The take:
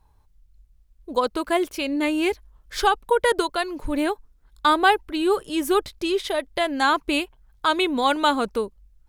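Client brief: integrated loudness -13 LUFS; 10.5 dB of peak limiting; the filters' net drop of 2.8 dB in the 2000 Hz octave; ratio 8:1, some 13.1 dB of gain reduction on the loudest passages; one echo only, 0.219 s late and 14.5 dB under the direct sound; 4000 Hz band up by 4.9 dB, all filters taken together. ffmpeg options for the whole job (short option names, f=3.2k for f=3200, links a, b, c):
-af "equalizer=f=2k:t=o:g=-6,equalizer=f=4k:t=o:g=8,acompressor=threshold=-28dB:ratio=8,alimiter=limit=-23.5dB:level=0:latency=1,aecho=1:1:219:0.188,volume=21.5dB"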